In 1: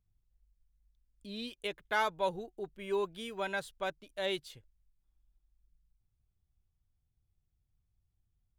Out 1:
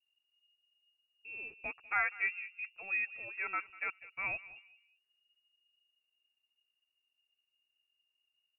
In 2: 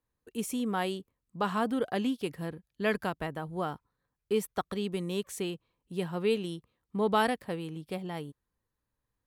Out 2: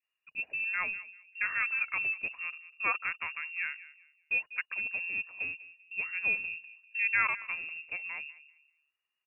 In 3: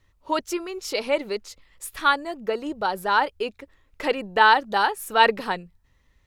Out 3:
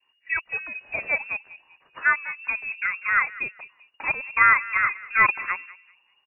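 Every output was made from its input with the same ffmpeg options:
ffmpeg -i in.wav -filter_complex "[0:a]highpass=41,adynamicequalizer=threshold=0.01:dfrequency=1700:dqfactor=2.5:tfrequency=1700:tqfactor=2.5:attack=5:release=100:ratio=0.375:range=2.5:mode=boostabove:tftype=bell,asplit=2[link_01][link_02];[link_02]adelay=196,lowpass=frequency=830:poles=1,volume=-14.5dB,asplit=2[link_03][link_04];[link_04]adelay=196,lowpass=frequency=830:poles=1,volume=0.34,asplit=2[link_05][link_06];[link_06]adelay=196,lowpass=frequency=830:poles=1,volume=0.34[link_07];[link_01][link_03][link_05][link_07]amix=inputs=4:normalize=0,lowpass=frequency=2500:width_type=q:width=0.5098,lowpass=frequency=2500:width_type=q:width=0.6013,lowpass=frequency=2500:width_type=q:width=0.9,lowpass=frequency=2500:width_type=q:width=2.563,afreqshift=-2900,volume=-2.5dB" out.wav

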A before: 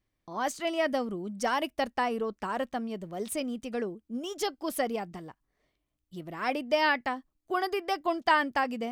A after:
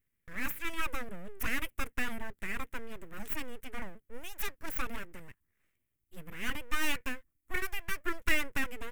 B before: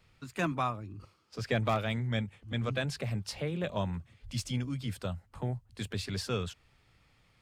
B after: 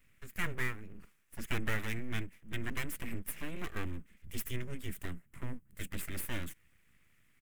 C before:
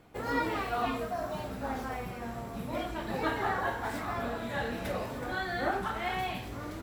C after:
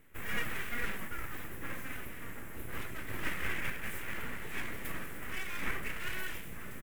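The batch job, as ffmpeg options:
ffmpeg -i in.wav -af "aeval=exprs='abs(val(0))':channel_layout=same,firequalizer=gain_entry='entry(110,0);entry(780,-13);entry(1100,-7);entry(1900,3);entry(4300,-12);entry(7800,1);entry(13000,8)':delay=0.05:min_phase=1" out.wav

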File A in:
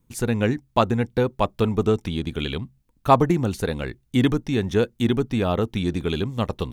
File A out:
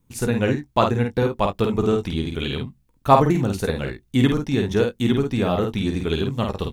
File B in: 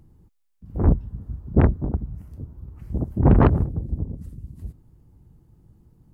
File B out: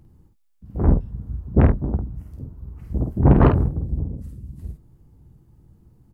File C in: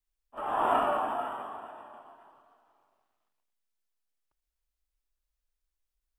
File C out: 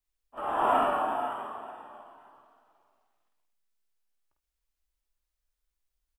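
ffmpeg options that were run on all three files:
ffmpeg -i in.wav -af "aecho=1:1:15|50|71:0.266|0.596|0.15" out.wav

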